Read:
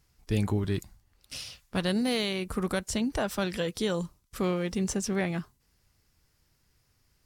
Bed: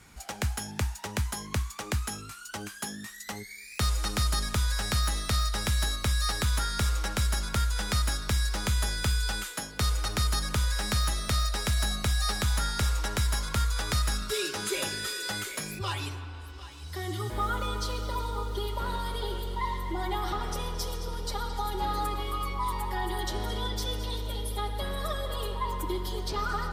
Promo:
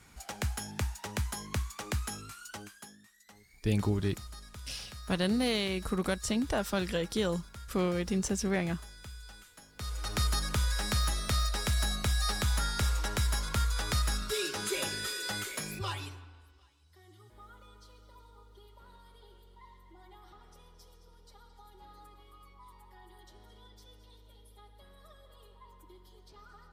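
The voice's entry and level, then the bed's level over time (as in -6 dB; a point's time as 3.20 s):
3.35 s, -1.5 dB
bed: 2.46 s -3.5 dB
3.05 s -19.5 dB
9.60 s -19.5 dB
10.17 s -2.5 dB
15.83 s -2.5 dB
16.85 s -24 dB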